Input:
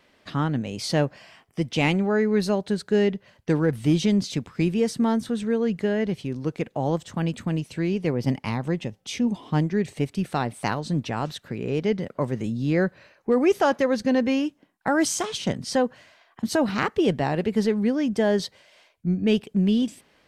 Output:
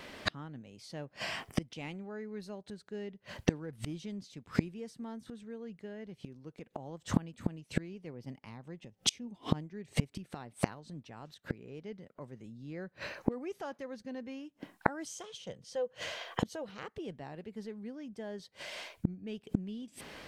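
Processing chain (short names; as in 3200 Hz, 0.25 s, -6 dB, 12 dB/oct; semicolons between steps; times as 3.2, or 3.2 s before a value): 15.07–16.88 thirty-one-band EQ 250 Hz -10 dB, 500 Hz +12 dB, 3150 Hz +7 dB, 6300 Hz +5 dB; flipped gate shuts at -26 dBFS, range -33 dB; gain +12 dB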